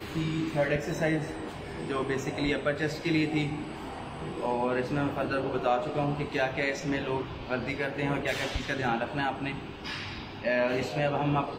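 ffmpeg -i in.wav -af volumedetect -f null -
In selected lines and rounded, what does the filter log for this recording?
mean_volume: -30.2 dB
max_volume: -14.4 dB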